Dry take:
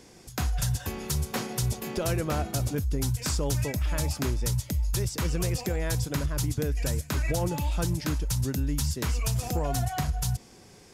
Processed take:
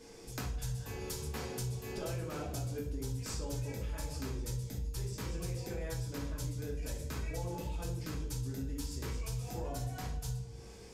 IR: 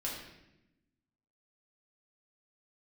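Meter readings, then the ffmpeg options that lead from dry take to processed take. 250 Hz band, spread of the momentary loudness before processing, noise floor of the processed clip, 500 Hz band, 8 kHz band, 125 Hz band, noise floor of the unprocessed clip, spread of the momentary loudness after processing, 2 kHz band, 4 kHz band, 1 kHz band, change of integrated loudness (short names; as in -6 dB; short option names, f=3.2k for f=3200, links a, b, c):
-10.5 dB, 2 LU, -50 dBFS, -9.0 dB, -11.5 dB, -10.0 dB, -52 dBFS, 2 LU, -11.0 dB, -11.0 dB, -11.5 dB, -10.5 dB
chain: -filter_complex "[1:a]atrim=start_sample=2205,asetrate=70560,aresample=44100[a];[0:a][a]afir=irnorm=-1:irlink=0,acompressor=threshold=-39dB:ratio=3,aeval=exprs='val(0)+0.00158*sin(2*PI*460*n/s)':c=same"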